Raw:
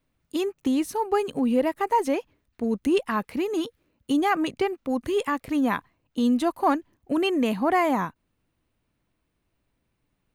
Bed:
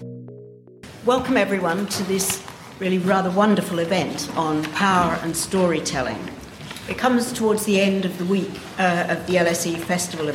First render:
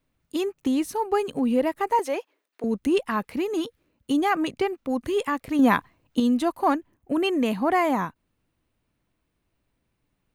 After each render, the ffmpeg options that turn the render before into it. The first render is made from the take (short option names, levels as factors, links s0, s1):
-filter_complex "[0:a]asettb=1/sr,asplit=3[s0][s1][s2];[s0]atrim=end=1.994[s3];[s1]atrim=start=1.99:end=2.64,asetpts=PTS-STARTPTS,afade=t=in:d=0.004:c=qsin,afade=t=out:st=0.646:d=0.004:c=qsin,highpass=f=370:w=0.5412,highpass=f=370:w=1.3066[s4];[s2]atrim=start=2.636[s5];[s3][s4]acrossfade=d=0.004:c1=hsin:c2=qsin[s6];[s6][s5]acrossfade=d=0.004:c1=qsin:c2=hsin,asettb=1/sr,asplit=3[s7][s8][s9];[s7]atrim=end=5.594[s10];[s8]atrim=start=5.59:end=6.2,asetpts=PTS-STARTPTS,afade=t=in:d=0.004:c=qsin,afade=t=out:st=0.606:d=0.004:c=qsin,acontrast=45[s11];[s9]atrim=start=6.196[s12];[s10][s11]acrossfade=d=0.004:c1=hsin:c2=qsin[s13];[s13][s12]acrossfade=d=0.004:c1=qsin:c2=hsin,asettb=1/sr,asplit=3[s14][s15][s16];[s14]atrim=end=6.754[s17];[s15]atrim=start=6.75:end=7.24,asetpts=PTS-STARTPTS,afade=t=in:d=0.004:c=qsin,afade=t=out:st=0.486:d=0.004:c=qsin,equalizer=f=4600:t=o:w=1.2:g=-6[s18];[s16]atrim=start=7.236[s19];[s17][s18]acrossfade=d=0.004:c1=hsin:c2=qsin[s20];[s20][s19]acrossfade=d=0.004:c1=qsin:c2=hsin"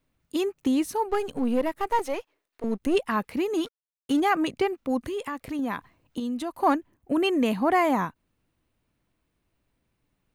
-filter_complex "[0:a]asplit=3[s0][s1][s2];[s0]afade=t=out:st=1.08:d=0.02[s3];[s1]aeval=exprs='if(lt(val(0),0),0.447*val(0),val(0))':c=same,afade=t=in:st=1.08:d=0.02,afade=t=out:st=2.94:d=0.02[s4];[s2]afade=t=in:st=2.94:d=0.02[s5];[s3][s4][s5]amix=inputs=3:normalize=0,asettb=1/sr,asplit=3[s6][s7][s8];[s6]atrim=end=3.654[s9];[s7]atrim=start=3.65:end=4.2,asetpts=PTS-STARTPTS,afade=t=in:d=0.004:c=qsin,afade=t=out:st=0.546:d=0.004:c=qsin,aeval=exprs='sgn(val(0))*max(abs(val(0))-0.00944,0)':c=same[s10];[s8]atrim=start=4.196[s11];[s9][s10]acrossfade=d=0.004:c1=hsin:c2=qsin[s12];[s12][s11]acrossfade=d=0.004:c1=qsin:c2=hsin,asettb=1/sr,asplit=3[s13][s14][s15];[s13]atrim=end=5.024[s16];[s14]atrim=start=5.02:end=6.6,asetpts=PTS-STARTPTS,afade=t=in:d=0.004:c=qsin,afade=t=out:st=1.576:d=0.004:c=qsin,acompressor=threshold=0.0282:ratio=2.5:attack=3.2:release=140:knee=1:detection=peak[s17];[s15]atrim=start=6.596[s18];[s16][s17]acrossfade=d=0.004:c1=hsin:c2=qsin[s19];[s19][s18]acrossfade=d=0.004:c1=qsin:c2=hsin"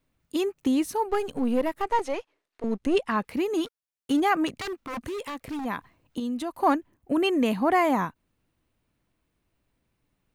-filter_complex "[0:a]asettb=1/sr,asplit=3[s0][s1][s2];[s0]atrim=end=1.824[s3];[s1]atrim=start=1.82:end=3.25,asetpts=PTS-STARTPTS,afade=t=in:d=0.004:c=qsin,afade=t=out:st=1.426:d=0.004:c=qsin,lowpass=8100[s4];[s2]atrim=start=3.246[s5];[s3][s4]acrossfade=d=0.004:c1=hsin:c2=qsin[s6];[s6][s5]acrossfade=d=0.004:c1=qsin:c2=hsin,asplit=3[s7][s8][s9];[s7]afade=t=out:st=4.47:d=0.02[s10];[s8]aeval=exprs='0.0398*(abs(mod(val(0)/0.0398+3,4)-2)-1)':c=same,afade=t=in:st=4.47:d=0.02,afade=t=out:st=5.64:d=0.02[s11];[s9]afade=t=in:st=5.64:d=0.02[s12];[s10][s11][s12]amix=inputs=3:normalize=0"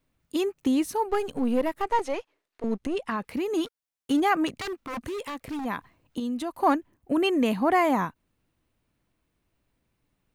-filter_complex "[0:a]asettb=1/sr,asplit=3[s0][s1][s2];[s0]atrim=end=2.794[s3];[s1]atrim=start=2.79:end=3.55,asetpts=PTS-STARTPTS,afade=t=in:d=0.004:c=qsin,afade=t=out:st=0.756:d=0.004:c=qsin,acompressor=threshold=0.0631:ratio=6:attack=3.2:release=140:knee=1:detection=peak[s4];[s2]atrim=start=3.546[s5];[s3][s4]acrossfade=d=0.004:c1=hsin:c2=qsin[s6];[s6][s5]acrossfade=d=0.004:c1=qsin:c2=hsin"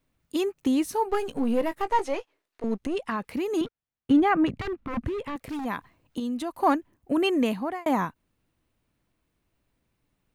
-filter_complex "[0:a]asettb=1/sr,asplit=3[s0][s1][s2];[s0]atrim=end=0.914[s3];[s1]atrim=start=0.91:end=2.64,asetpts=PTS-STARTPTS,afade=t=in:d=0.004:c=qsin,afade=t=out:st=1.726:d=0.004:c=qsin,asplit=2[s4][s5];[s5]adelay=18,volume=0.237[s6];[s4][s6]amix=inputs=2:normalize=0,atrim=end_sample=76293[s7];[s2]atrim=start=2.636[s8];[s3][s7]acrossfade=d=0.004:c1=hsin:c2=qsin[s9];[s9][s8]acrossfade=d=0.004:c1=qsin:c2=hsin,asettb=1/sr,asplit=3[s10][s11][s12];[s10]atrim=end=3.614[s13];[s11]atrim=start=3.61:end=5.36,asetpts=PTS-STARTPTS,afade=t=in:d=0.004:c=qsin,afade=t=out:st=1.746:d=0.004:c=qsin,bass=f=250:g=12,treble=f=4000:g=-15[s14];[s12]atrim=start=5.356[s15];[s13][s14]acrossfade=d=0.004:c1=hsin:c2=qsin[s16];[s16][s15]acrossfade=d=0.004:c1=qsin:c2=hsin,asplit=2[s17][s18];[s17]atrim=end=7.86,asetpts=PTS-STARTPTS,afade=t=out:st=7.42:d=0.44[s19];[s18]atrim=start=7.86,asetpts=PTS-STARTPTS,afade=t=in:d=0.004:c=hsin[s20];[s19][s20]concat=n=2:v=0:a=1"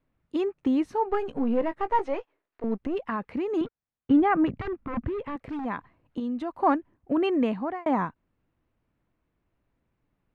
-af "lowpass=1800,aemphasis=mode=production:type=cd"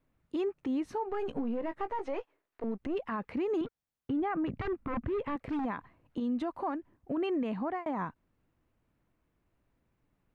-af "acompressor=threshold=0.0631:ratio=6,alimiter=level_in=1.26:limit=0.0631:level=0:latency=1:release=70,volume=0.794"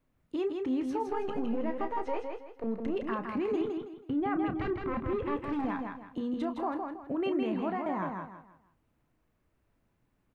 -filter_complex "[0:a]asplit=2[s0][s1];[s1]adelay=31,volume=0.282[s2];[s0][s2]amix=inputs=2:normalize=0,aecho=1:1:162|324|486|648:0.596|0.191|0.061|0.0195"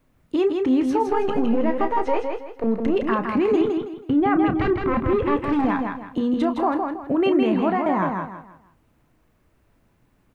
-af "volume=3.76"